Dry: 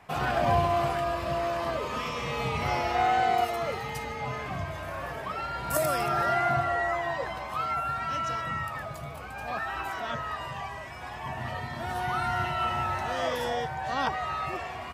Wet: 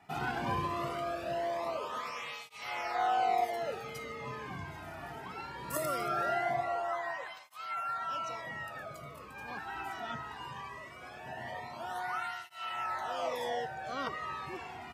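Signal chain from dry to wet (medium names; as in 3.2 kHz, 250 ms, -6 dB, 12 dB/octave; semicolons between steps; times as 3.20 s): cancelling through-zero flanger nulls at 0.2 Hz, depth 1.9 ms; trim -4 dB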